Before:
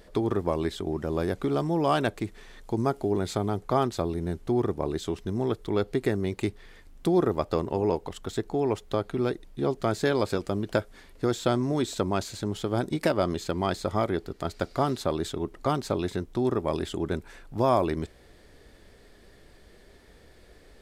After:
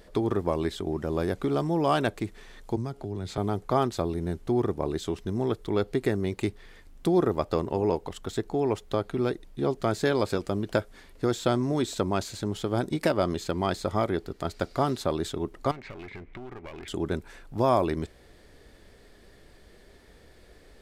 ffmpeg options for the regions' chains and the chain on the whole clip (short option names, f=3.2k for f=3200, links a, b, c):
-filter_complex "[0:a]asettb=1/sr,asplit=3[a][b][c];[a]atrim=end=2.764[d];[b]atrim=start=2.76:end=3.38,asetpts=PTS-STARTPTS,afade=t=in:d=0.004:c=qsin,afade=t=out:st=0.616:d=0.004:c=qsin,highshelf=f=5.9k:g=-11.5,acrossover=split=160|3000[e][f][g];[f]acompressor=threshold=-36dB:ratio=4:attack=3.2:release=140:knee=2.83:detection=peak[h];[e][h][g]amix=inputs=3:normalize=0[i];[c]atrim=start=3.376[j];[d][i]acrossfade=d=0.004:c1=hsin:c2=qsin[k];[k][j]acrossfade=d=0.004:c1=qsin:c2=hsin,asettb=1/sr,asplit=3[l][m][n];[l]atrim=end=15.714[o];[m]atrim=start=15.71:end=16.88,asetpts=PTS-STARTPTS,afade=t=in:d=0.004:c=qsin,afade=t=out:st=1.166:d=0.004:c=qsin,lowpass=f=2.2k:t=q:w=8.2,aeval=exprs='clip(val(0),-1,0.0282)':c=same,acompressor=threshold=-39dB:ratio=4:attack=3.2:release=140:knee=1:detection=peak[p];[n]atrim=start=16.876[q];[o][p]acrossfade=d=0.004:c1=hsin:c2=qsin[r];[r][q]acrossfade=d=0.004:c1=qsin:c2=hsin"